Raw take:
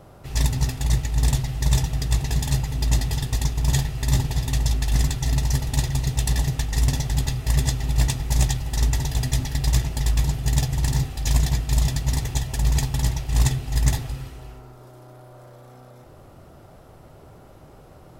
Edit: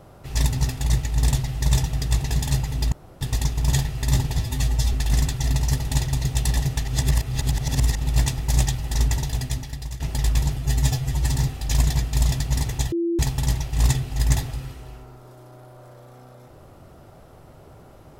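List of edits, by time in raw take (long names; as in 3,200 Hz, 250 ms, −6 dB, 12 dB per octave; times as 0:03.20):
0:02.92–0:03.21: fill with room tone
0:04.39–0:04.75: time-stretch 1.5×
0:06.67–0:07.83: reverse
0:08.95–0:09.82: fade out, to −17 dB
0:10.39–0:10.91: time-stretch 1.5×
0:12.48–0:12.75: beep over 339 Hz −20 dBFS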